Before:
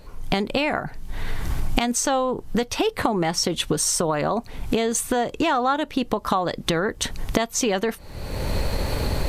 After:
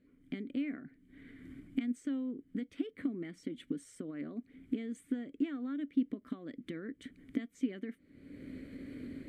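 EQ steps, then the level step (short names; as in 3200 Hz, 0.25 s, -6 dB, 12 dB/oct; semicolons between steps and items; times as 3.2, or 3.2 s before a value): vowel filter i; band shelf 3800 Hz -13 dB; -3.5 dB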